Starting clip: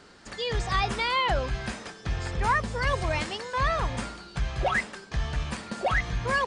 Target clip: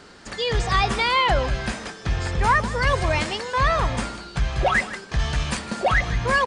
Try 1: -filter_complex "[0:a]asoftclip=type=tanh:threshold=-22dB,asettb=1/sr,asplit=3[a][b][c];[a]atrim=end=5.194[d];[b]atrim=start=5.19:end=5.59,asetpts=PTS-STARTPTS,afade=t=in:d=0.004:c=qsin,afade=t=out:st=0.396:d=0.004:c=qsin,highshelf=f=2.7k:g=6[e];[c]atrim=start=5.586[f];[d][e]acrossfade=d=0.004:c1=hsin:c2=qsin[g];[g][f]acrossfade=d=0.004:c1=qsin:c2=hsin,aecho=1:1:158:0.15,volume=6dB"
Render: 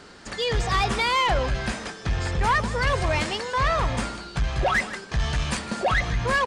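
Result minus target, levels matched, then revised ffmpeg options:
soft clip: distortion +18 dB
-filter_complex "[0:a]asoftclip=type=tanh:threshold=-10.5dB,asettb=1/sr,asplit=3[a][b][c];[a]atrim=end=5.194[d];[b]atrim=start=5.19:end=5.59,asetpts=PTS-STARTPTS,afade=t=in:d=0.004:c=qsin,afade=t=out:st=0.396:d=0.004:c=qsin,highshelf=f=2.7k:g=6[e];[c]atrim=start=5.586[f];[d][e]acrossfade=d=0.004:c1=hsin:c2=qsin[g];[g][f]acrossfade=d=0.004:c1=qsin:c2=hsin,aecho=1:1:158:0.15,volume=6dB"

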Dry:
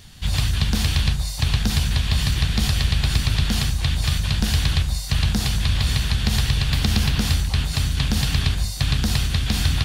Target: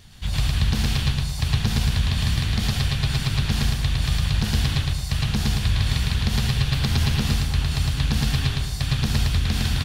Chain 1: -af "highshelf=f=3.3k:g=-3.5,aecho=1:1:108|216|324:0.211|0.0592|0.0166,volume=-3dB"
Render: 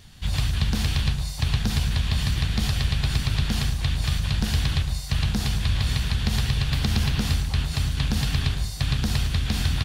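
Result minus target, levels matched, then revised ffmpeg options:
echo-to-direct -11.5 dB
-af "highshelf=f=3.3k:g=-3.5,aecho=1:1:108|216|324|432:0.794|0.222|0.0623|0.0174,volume=-3dB"

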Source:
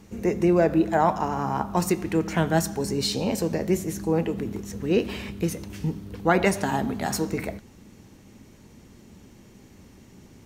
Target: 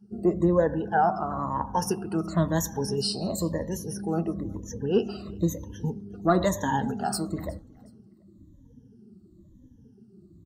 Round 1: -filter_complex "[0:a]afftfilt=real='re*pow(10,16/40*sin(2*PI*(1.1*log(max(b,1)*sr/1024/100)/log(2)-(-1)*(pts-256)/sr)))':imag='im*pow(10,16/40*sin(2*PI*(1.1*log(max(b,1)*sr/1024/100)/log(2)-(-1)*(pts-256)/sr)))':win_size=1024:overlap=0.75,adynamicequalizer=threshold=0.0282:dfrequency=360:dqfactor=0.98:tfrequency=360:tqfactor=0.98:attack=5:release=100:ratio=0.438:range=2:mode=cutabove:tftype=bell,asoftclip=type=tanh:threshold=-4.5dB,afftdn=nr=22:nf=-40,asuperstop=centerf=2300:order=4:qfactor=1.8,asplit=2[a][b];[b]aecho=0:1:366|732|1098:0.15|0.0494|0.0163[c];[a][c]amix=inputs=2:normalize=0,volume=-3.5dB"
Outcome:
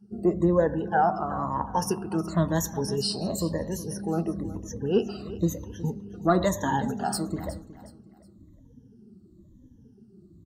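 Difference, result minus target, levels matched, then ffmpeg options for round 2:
echo-to-direct +9 dB
-filter_complex "[0:a]afftfilt=real='re*pow(10,16/40*sin(2*PI*(1.1*log(max(b,1)*sr/1024/100)/log(2)-(-1)*(pts-256)/sr)))':imag='im*pow(10,16/40*sin(2*PI*(1.1*log(max(b,1)*sr/1024/100)/log(2)-(-1)*(pts-256)/sr)))':win_size=1024:overlap=0.75,adynamicequalizer=threshold=0.0282:dfrequency=360:dqfactor=0.98:tfrequency=360:tqfactor=0.98:attack=5:release=100:ratio=0.438:range=2:mode=cutabove:tftype=bell,asoftclip=type=tanh:threshold=-4.5dB,afftdn=nr=22:nf=-40,asuperstop=centerf=2300:order=4:qfactor=1.8,asplit=2[a][b];[b]aecho=0:1:366|732:0.0531|0.0175[c];[a][c]amix=inputs=2:normalize=0,volume=-3.5dB"

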